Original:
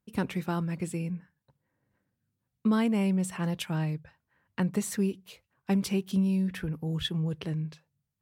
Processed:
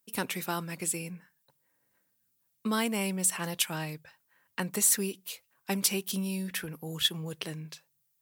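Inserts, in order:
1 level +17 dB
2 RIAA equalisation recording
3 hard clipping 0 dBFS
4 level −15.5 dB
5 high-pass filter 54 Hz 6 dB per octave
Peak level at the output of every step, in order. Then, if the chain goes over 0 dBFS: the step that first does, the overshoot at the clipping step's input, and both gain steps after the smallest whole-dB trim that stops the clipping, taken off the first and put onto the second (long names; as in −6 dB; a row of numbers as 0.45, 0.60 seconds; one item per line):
+1.0, +6.0, 0.0, −15.5, −15.0 dBFS
step 1, 6.0 dB
step 1 +11 dB, step 4 −9.5 dB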